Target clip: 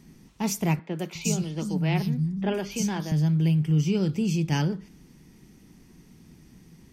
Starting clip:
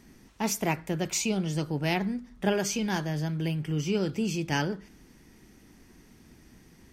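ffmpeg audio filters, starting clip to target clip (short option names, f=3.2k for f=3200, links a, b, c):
-filter_complex "[0:a]equalizer=f=160:t=o:w=0.67:g=9,equalizer=f=630:t=o:w=0.67:g=-3,equalizer=f=1.6k:t=o:w=0.67:g=-5,asettb=1/sr,asplit=3[a][b][c];[a]atrim=end=0.794[d];[b]atrim=start=0.79:end=3.12,asetpts=PTS-STARTPTS,afade=t=in:d=0.004:c=qsin,afade=t=out:st=2.326:d=0.004:c=qsin,acrossover=split=200|4100[e][f][g];[g]adelay=120[h];[e]adelay=360[i];[i][f][h]amix=inputs=3:normalize=0,atrim=end_sample=102753[j];[c]atrim=start=3.116[k];[d][j]acrossfade=d=0.004:c1=hsin:c2=qsin[l];[l][k]acrossfade=d=0.004:c1=qsin:c2=hsin"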